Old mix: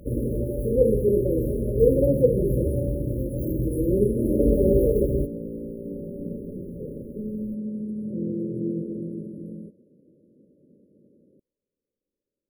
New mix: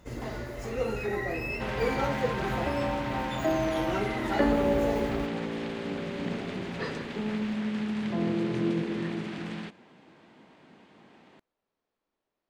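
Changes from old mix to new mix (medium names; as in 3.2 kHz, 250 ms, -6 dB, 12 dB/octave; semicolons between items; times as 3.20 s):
first sound -11.5 dB; master: remove brick-wall FIR band-stop 600–9600 Hz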